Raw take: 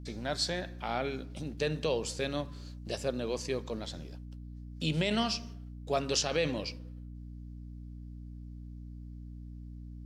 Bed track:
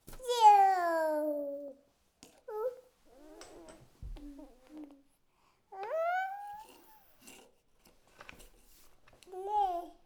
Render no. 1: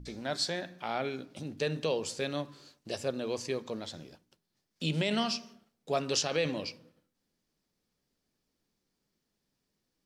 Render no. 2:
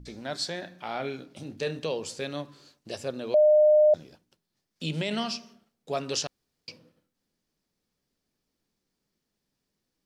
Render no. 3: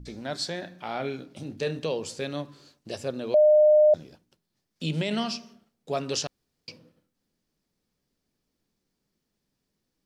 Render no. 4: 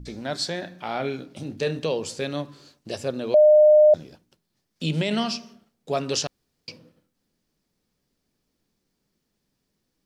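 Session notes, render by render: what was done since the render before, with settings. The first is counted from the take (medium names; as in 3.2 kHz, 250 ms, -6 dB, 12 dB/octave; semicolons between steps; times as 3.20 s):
de-hum 60 Hz, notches 5
0.59–1.79 s: doubling 29 ms -9 dB; 3.34–3.94 s: bleep 607 Hz -15 dBFS; 6.27–6.68 s: room tone
bass shelf 440 Hz +3.5 dB
trim +3.5 dB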